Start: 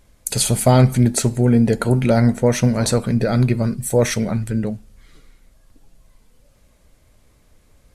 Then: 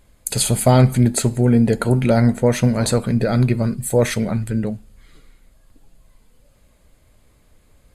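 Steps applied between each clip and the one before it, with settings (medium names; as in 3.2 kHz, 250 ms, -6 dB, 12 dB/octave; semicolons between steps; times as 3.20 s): band-stop 5.7 kHz, Q 5.5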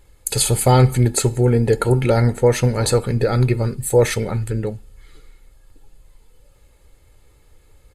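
comb 2.3 ms, depth 59%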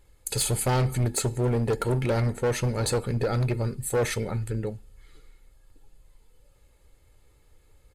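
overload inside the chain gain 13 dB; trim -7 dB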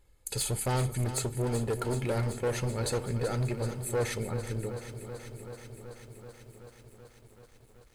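bit-crushed delay 381 ms, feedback 80%, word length 9-bit, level -11.5 dB; trim -5.5 dB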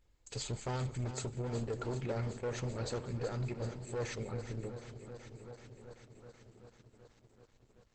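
trim -6 dB; Opus 12 kbps 48 kHz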